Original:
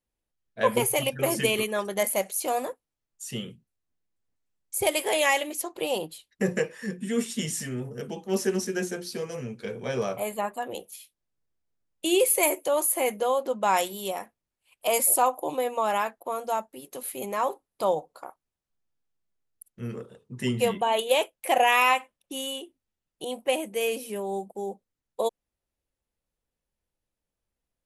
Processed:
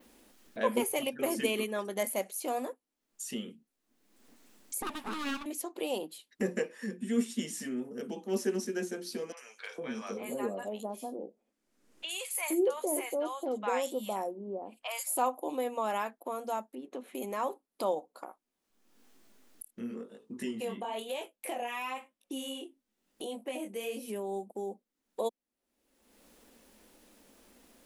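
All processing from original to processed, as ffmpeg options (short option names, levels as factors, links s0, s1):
-filter_complex "[0:a]asettb=1/sr,asplit=3[s0][s1][s2];[s0]atrim=end=4.824[s3];[s1]atrim=start=4.82:end=5.46,asetpts=PTS-STARTPTS,afade=t=in:d=0.004:c=qsin,afade=t=out:st=0.636:d=0.004:c=qsin,lowpass=f=1300:p=1,aeval=exprs='abs(val(0))':c=same[s4];[s2]atrim=start=5.456[s5];[s3][s4]acrossfade=d=0.004:c1=hsin:c2=qsin[s6];[s6][s5]acrossfade=d=0.004:c1=qsin:c2=hsin,asettb=1/sr,asplit=3[s7][s8][s9];[s7]atrim=end=9.324[s10];[s8]atrim=start=9.32:end=15.17,asetpts=PTS-STARTPTS,afade=t=in:d=0.004:c=qsin,afade=t=out:st=5.846:d=0.004:c=qsin,lowpass=11000,acrossover=split=830|3800[s11][s12][s13];[s13]adelay=50[s14];[s11]adelay=460[s15];[s15][s12][s14]amix=inputs=3:normalize=0,atrim=end_sample=257985[s16];[s9]atrim=start=15.166[s17];[s10][s16]acrossfade=d=0.004:c1=hsin:c2=qsin[s18];[s18][s17]acrossfade=d=0.004:c1=qsin:c2=hsin,asettb=1/sr,asplit=3[s19][s20][s21];[s19]atrim=end=16.754[s22];[s20]atrim=start=16.75:end=17.15,asetpts=PTS-STARTPTS,afade=t=in:d=0.004:c=qsin,afade=t=out:st=0.396:d=0.004:c=qsin,bandreject=f=4800:w=5.1,adynamicsmooth=sensitivity=2.5:basefreq=2500[s23];[s21]atrim=start=17.146[s24];[s22][s23]acrossfade=d=0.004:c1=hsin:c2=qsin[s25];[s25][s24]acrossfade=d=0.004:c1=qsin:c2=hsin,asettb=1/sr,asplit=3[s26][s27][s28];[s26]atrim=end=18.254[s29];[s27]atrim=start=18.25:end=24.08,asetpts=PTS-STARTPTS,afade=t=in:d=0.004:c=qsin,afade=t=out:st=5.826:d=0.004:c=qsin,acompressor=threshold=0.0708:ratio=6:attack=3.2:release=140:knee=1:detection=peak,flanger=delay=18:depth=7.7:speed=1[s30];[s28]atrim=start=24.076[s31];[s29][s30]acrossfade=d=0.004:c1=hsin:c2=qsin[s32];[s32][s31]acrossfade=d=0.004:c1=qsin:c2=hsin,lowshelf=f=170:t=q:w=3:g=-11.5,acompressor=mode=upward:threshold=0.0501:ratio=2.5,adynamicequalizer=threshold=0.01:dfrequency=8500:dqfactor=0.71:tfrequency=8500:tqfactor=0.71:attack=5:release=100:ratio=0.375:range=2:mode=cutabove:tftype=bell,volume=0.422"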